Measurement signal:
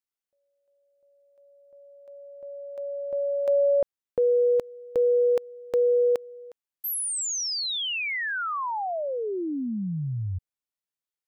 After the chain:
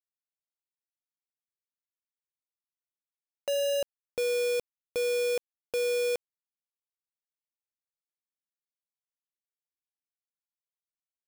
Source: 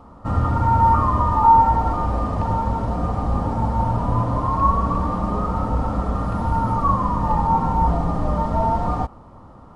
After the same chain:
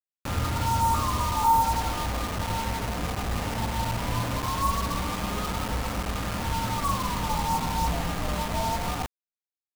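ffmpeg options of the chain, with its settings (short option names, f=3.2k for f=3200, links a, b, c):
-af "acrusher=bits=3:mix=0:aa=0.000001,volume=-8.5dB"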